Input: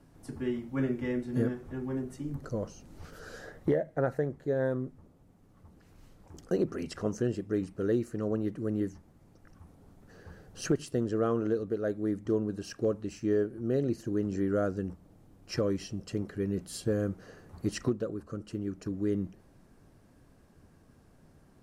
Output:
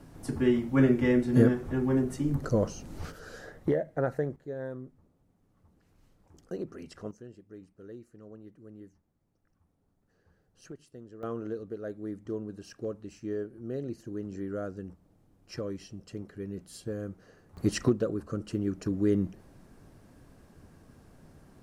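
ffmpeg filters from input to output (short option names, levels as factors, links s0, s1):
-af "asetnsamples=n=441:p=0,asendcmd='3.12 volume volume 0dB;4.36 volume volume -8dB;7.11 volume volume -17.5dB;11.23 volume volume -6.5dB;17.57 volume volume 4.5dB',volume=2.51"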